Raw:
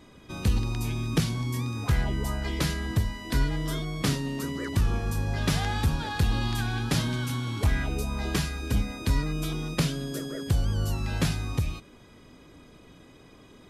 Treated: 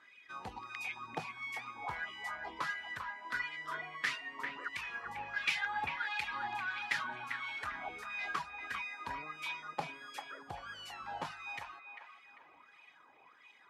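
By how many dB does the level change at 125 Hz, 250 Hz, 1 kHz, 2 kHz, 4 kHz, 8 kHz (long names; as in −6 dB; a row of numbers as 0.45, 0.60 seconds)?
−32.0, −25.5, −2.5, −0.5, −10.0, −18.0 decibels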